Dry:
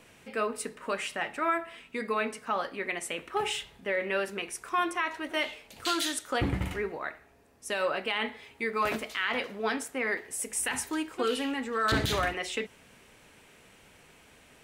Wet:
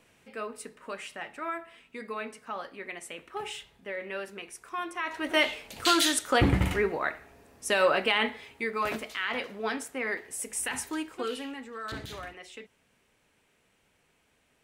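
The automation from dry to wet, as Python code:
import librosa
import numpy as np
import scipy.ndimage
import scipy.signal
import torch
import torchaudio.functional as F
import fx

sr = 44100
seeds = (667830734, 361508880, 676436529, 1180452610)

y = fx.gain(x, sr, db=fx.line((4.9, -6.5), (5.31, 6.0), (8.06, 6.0), (8.79, -1.5), (10.99, -1.5), (12.02, -12.5)))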